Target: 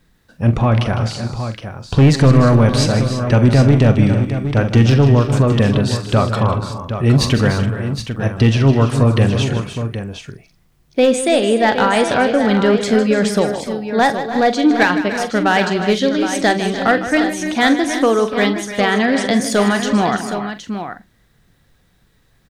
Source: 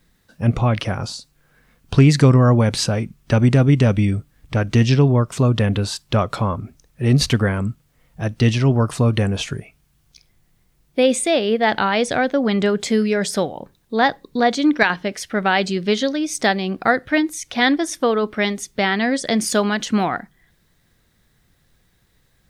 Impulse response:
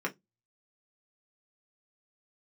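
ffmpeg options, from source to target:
-filter_complex "[0:a]asoftclip=type=hard:threshold=-10dB,highshelf=frequency=4300:gain=-5.5,bandreject=frequency=2100:width=29,asplit=2[link_01][link_02];[link_02]adelay=44,volume=-12dB[link_03];[link_01][link_03]amix=inputs=2:normalize=0,asplit=2[link_04][link_05];[link_05]aecho=0:1:155|290|297|333|767:0.251|0.133|0.2|0.211|0.335[link_06];[link_04][link_06]amix=inputs=2:normalize=0,volume=3.5dB"

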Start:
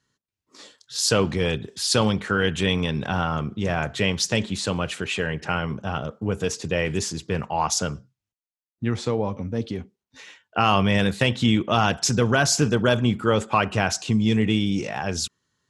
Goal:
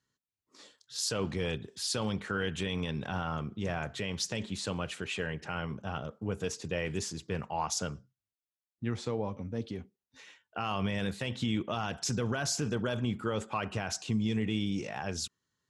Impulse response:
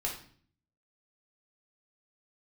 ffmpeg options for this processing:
-af "alimiter=limit=-12.5dB:level=0:latency=1:release=49,volume=-9dB"

